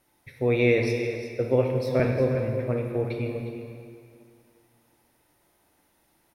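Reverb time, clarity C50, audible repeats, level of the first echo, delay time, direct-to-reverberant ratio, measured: 2.2 s, 2.5 dB, 1, -11.0 dB, 356 ms, 1.0 dB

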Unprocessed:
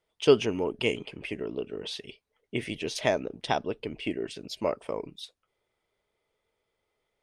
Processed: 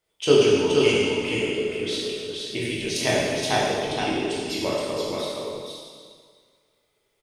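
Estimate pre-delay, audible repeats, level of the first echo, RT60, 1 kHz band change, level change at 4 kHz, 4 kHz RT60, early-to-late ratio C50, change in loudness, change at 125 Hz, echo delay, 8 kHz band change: 7 ms, 1, -3.5 dB, 1.9 s, +6.0 dB, +9.5 dB, 1.7 s, -3.5 dB, +7.0 dB, +7.5 dB, 471 ms, +12.5 dB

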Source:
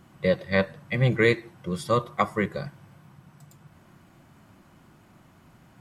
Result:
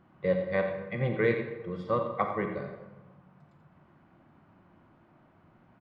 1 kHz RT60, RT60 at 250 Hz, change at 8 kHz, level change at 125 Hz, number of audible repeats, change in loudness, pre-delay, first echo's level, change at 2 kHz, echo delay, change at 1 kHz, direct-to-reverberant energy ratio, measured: 1.1 s, 1.3 s, under -30 dB, -8.0 dB, 1, -5.0 dB, 32 ms, -10.0 dB, -7.5 dB, 87 ms, -4.0 dB, 4.0 dB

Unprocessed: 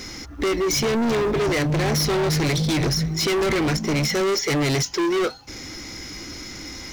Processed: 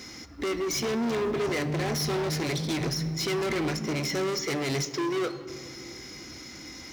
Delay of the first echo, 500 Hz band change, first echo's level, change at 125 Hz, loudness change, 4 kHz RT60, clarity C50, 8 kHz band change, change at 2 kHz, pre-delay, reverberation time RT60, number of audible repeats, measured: no echo, -7.0 dB, no echo, -8.5 dB, -7.0 dB, 1.3 s, 12.5 dB, -7.0 dB, -7.0 dB, 3 ms, 2.5 s, no echo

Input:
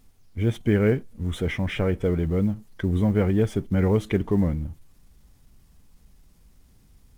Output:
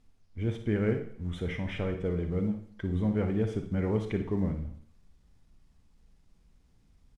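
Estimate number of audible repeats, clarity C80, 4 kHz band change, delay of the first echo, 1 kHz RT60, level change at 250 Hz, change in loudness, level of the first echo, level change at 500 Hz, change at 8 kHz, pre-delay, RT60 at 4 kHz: 1, 12.0 dB, -8.5 dB, 57 ms, 0.65 s, -7.0 dB, -7.5 dB, -10.5 dB, -7.5 dB, no reading, 31 ms, 0.60 s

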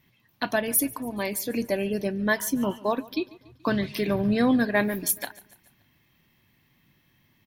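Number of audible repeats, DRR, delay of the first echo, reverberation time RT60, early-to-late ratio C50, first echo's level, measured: 3, no reverb, 143 ms, no reverb, no reverb, -21.5 dB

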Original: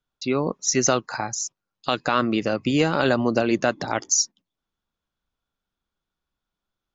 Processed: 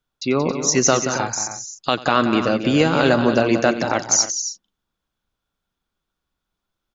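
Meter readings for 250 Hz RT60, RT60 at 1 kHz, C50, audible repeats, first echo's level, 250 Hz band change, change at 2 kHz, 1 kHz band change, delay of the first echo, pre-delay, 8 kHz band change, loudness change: no reverb, no reverb, no reverb, 4, -19.0 dB, +4.5 dB, +4.5 dB, +4.5 dB, 91 ms, no reverb, no reading, +4.0 dB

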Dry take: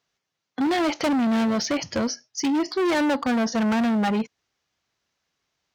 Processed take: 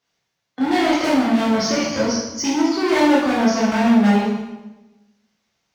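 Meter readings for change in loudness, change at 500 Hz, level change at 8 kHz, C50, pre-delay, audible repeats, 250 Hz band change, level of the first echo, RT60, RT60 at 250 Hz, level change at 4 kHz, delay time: +5.5 dB, +6.0 dB, +5.5 dB, 0.5 dB, 12 ms, no echo, +5.5 dB, no echo, 1.1 s, 1.3 s, +5.5 dB, no echo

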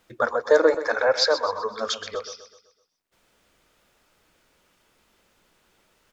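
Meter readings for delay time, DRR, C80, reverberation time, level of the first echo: 127 ms, no reverb, no reverb, no reverb, -12.0 dB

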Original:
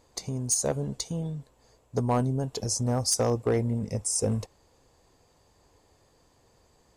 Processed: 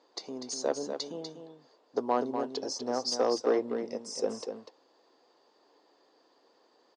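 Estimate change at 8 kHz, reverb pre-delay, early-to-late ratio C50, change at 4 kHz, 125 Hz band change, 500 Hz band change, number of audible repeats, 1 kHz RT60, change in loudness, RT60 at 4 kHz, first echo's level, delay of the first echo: -12.0 dB, no reverb, no reverb, -1.5 dB, -27.0 dB, 0.0 dB, 1, no reverb, -4.5 dB, no reverb, -7.5 dB, 245 ms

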